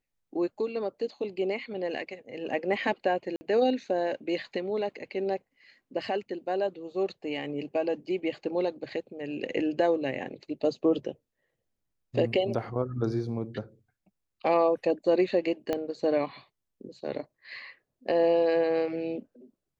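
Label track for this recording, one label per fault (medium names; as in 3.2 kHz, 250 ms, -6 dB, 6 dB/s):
3.360000	3.410000	dropout 50 ms
15.730000	15.730000	pop -16 dBFS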